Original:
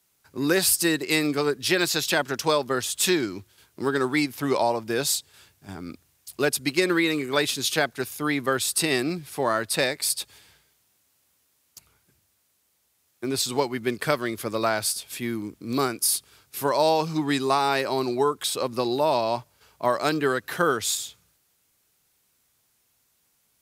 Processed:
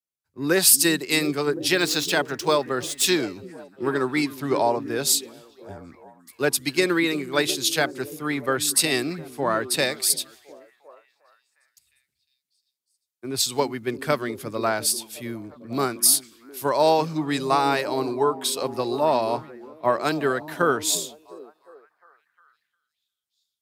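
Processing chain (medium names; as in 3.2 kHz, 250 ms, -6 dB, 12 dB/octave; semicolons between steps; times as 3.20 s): 1.74–3.06 s: median filter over 3 samples; repeats whose band climbs or falls 355 ms, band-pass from 210 Hz, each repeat 0.7 oct, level -6.5 dB; three bands expanded up and down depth 70%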